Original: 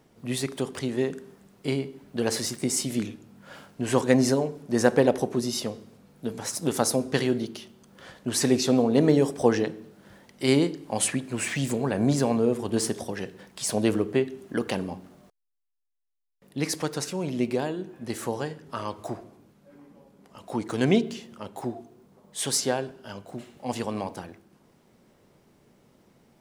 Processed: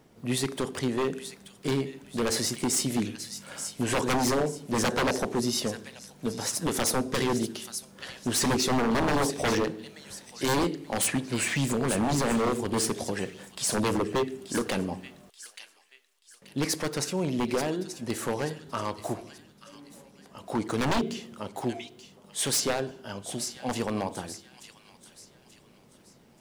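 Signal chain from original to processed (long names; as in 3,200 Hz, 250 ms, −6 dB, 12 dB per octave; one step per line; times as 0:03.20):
delay with a high-pass on its return 882 ms, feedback 37%, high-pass 2,300 Hz, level −9.5 dB
wave folding −21 dBFS
level +1.5 dB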